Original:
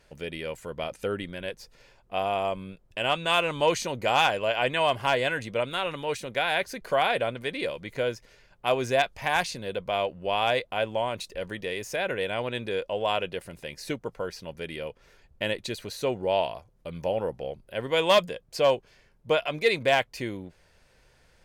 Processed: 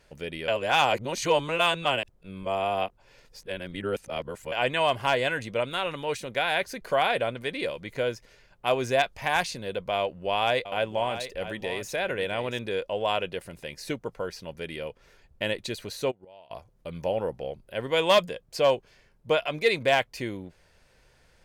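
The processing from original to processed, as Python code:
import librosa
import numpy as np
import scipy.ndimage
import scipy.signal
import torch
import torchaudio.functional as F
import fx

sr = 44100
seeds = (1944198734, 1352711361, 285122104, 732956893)

y = fx.echo_single(x, sr, ms=681, db=-11.5, at=(9.97, 12.59))
y = fx.gate_flip(y, sr, shuts_db=-25.0, range_db=-26, at=(16.1, 16.5), fade=0.02)
y = fx.edit(y, sr, fx.reverse_span(start_s=0.48, length_s=4.04), tone=tone)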